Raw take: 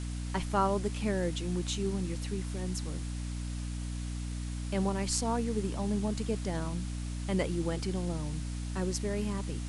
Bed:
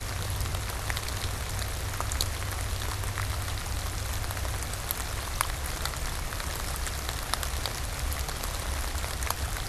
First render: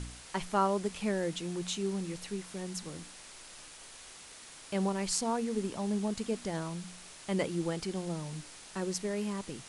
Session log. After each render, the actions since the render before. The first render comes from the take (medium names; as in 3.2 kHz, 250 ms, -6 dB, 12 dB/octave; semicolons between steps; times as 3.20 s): de-hum 60 Hz, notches 5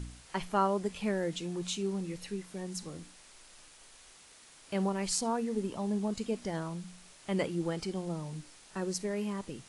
noise print and reduce 6 dB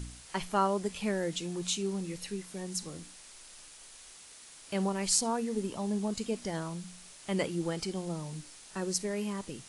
treble shelf 3.8 kHz +7 dB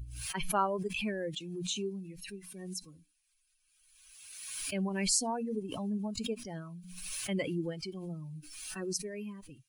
expander on every frequency bin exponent 2; swell ahead of each attack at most 37 dB/s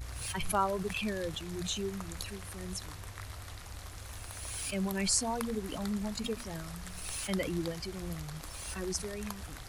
add bed -13 dB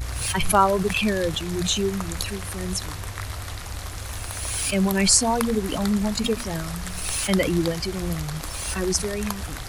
trim +12 dB; peak limiter -1 dBFS, peak gain reduction 2 dB